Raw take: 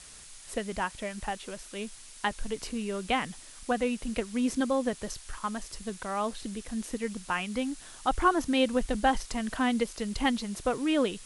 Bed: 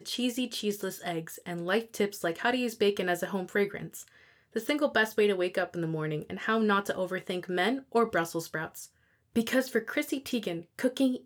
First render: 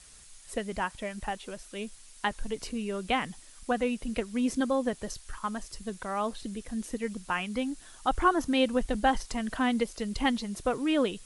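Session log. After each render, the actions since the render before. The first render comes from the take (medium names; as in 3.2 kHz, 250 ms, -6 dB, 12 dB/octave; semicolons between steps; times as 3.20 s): noise reduction 6 dB, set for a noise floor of -49 dBFS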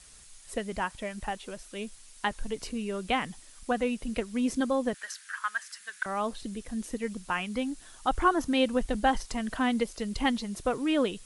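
4.94–6.06 s: resonant high-pass 1.6 kHz, resonance Q 5.2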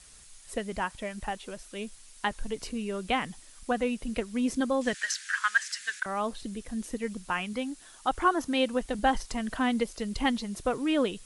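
4.81–6.00 s: high-order bell 3.5 kHz +9.5 dB 2.7 oct; 7.53–8.99 s: bass shelf 150 Hz -9.5 dB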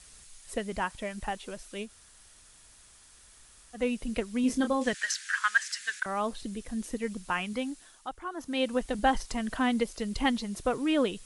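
1.86–3.78 s: room tone, crossfade 0.10 s; 4.41–4.89 s: doubling 27 ms -7.5 dB; 7.69–8.75 s: dip -14 dB, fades 0.46 s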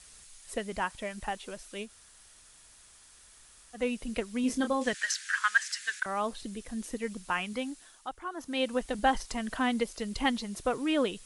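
bass shelf 320 Hz -4 dB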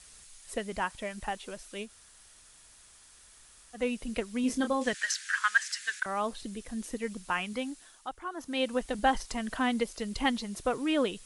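no audible change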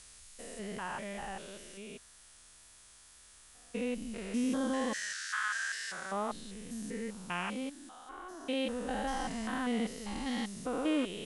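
spectrogram pixelated in time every 200 ms; wow and flutter 28 cents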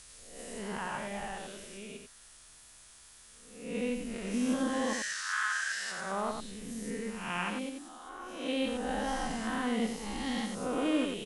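reverse spectral sustain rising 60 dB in 0.67 s; on a send: delay 90 ms -6 dB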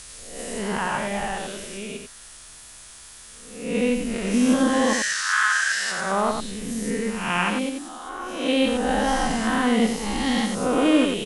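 trim +11.5 dB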